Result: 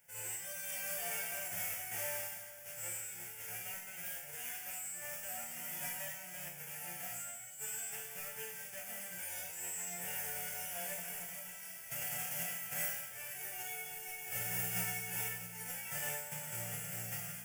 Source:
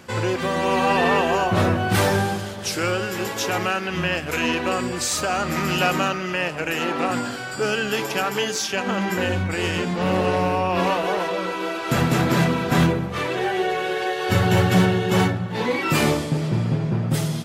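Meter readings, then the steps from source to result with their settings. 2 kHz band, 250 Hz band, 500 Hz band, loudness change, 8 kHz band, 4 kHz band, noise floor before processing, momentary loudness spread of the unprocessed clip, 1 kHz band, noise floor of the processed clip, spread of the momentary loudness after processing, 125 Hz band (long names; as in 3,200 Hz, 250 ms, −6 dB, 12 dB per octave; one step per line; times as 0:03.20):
−19.5 dB, −34.0 dB, −29.0 dB, −17.5 dB, −7.5 dB, −21.5 dB, −30 dBFS, 6 LU, −27.0 dB, −49 dBFS, 7 LU, −29.5 dB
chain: spectral envelope flattened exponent 0.1
phaser with its sweep stopped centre 1,100 Hz, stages 6
resonators tuned to a chord A#2 major, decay 0.52 s
level −1.5 dB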